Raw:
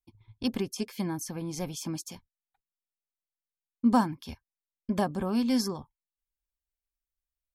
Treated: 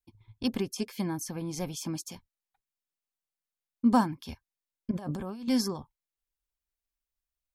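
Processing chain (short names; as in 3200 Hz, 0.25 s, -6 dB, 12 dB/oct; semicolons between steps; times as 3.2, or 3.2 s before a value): 4.91–5.48 negative-ratio compressor -37 dBFS, ratio -1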